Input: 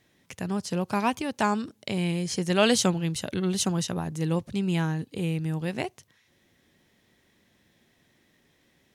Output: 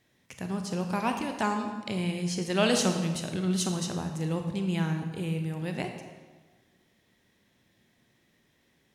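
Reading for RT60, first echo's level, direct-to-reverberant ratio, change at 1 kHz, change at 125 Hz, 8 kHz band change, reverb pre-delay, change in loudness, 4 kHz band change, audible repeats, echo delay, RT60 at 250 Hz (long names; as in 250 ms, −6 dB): 1.4 s, no echo audible, 4.5 dB, −2.5 dB, −2.0 dB, −3.0 dB, 27 ms, −2.5 dB, −3.0 dB, no echo audible, no echo audible, 1.4 s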